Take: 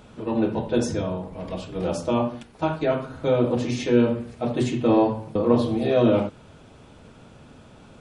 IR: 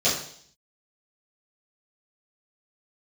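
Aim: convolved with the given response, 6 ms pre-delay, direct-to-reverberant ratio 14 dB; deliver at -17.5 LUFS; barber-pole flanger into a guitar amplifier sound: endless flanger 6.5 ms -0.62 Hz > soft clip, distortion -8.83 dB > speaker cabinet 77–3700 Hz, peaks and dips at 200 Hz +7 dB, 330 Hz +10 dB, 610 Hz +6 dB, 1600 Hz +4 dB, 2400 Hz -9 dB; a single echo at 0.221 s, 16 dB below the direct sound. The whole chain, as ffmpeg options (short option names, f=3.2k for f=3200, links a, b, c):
-filter_complex "[0:a]aecho=1:1:221:0.158,asplit=2[a][b];[1:a]atrim=start_sample=2205,adelay=6[c];[b][c]afir=irnorm=-1:irlink=0,volume=-29dB[d];[a][d]amix=inputs=2:normalize=0,asplit=2[e][f];[f]adelay=6.5,afreqshift=-0.62[g];[e][g]amix=inputs=2:normalize=1,asoftclip=threshold=-22.5dB,highpass=77,equalizer=f=200:t=q:w=4:g=7,equalizer=f=330:t=q:w=4:g=10,equalizer=f=610:t=q:w=4:g=6,equalizer=f=1.6k:t=q:w=4:g=4,equalizer=f=2.4k:t=q:w=4:g=-9,lowpass=f=3.7k:w=0.5412,lowpass=f=3.7k:w=1.3066,volume=7.5dB"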